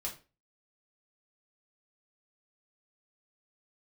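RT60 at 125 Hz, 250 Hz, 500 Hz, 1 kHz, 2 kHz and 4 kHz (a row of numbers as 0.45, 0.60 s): 0.40, 0.35, 0.35, 0.30, 0.30, 0.25 s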